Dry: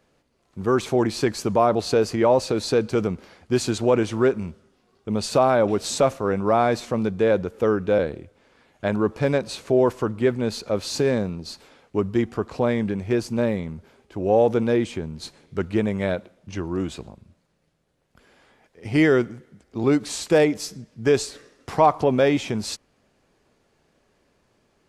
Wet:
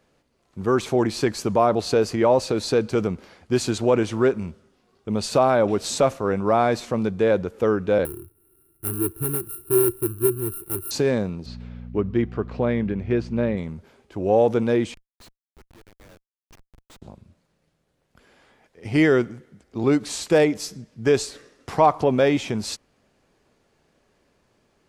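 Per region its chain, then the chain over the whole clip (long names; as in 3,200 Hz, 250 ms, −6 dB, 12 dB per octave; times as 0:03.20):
0:08.05–0:10.91: samples sorted by size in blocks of 32 samples + drawn EQ curve 120 Hz 0 dB, 250 Hz −15 dB, 360 Hz +8 dB, 540 Hz −25 dB, 1,300 Hz −16 dB, 2,800 Hz −21 dB, 6,700 Hz −27 dB, 10,000 Hz +9 dB
0:11.45–0:13.56: low-pass filter 3,000 Hz + parametric band 900 Hz −4 dB 1.1 octaves + hum with harmonics 60 Hz, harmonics 4, −37 dBFS −3 dB per octave
0:14.94–0:17.02: first difference + hum removal 96.94 Hz, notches 32 + comparator with hysteresis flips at −42.5 dBFS
whole clip: no processing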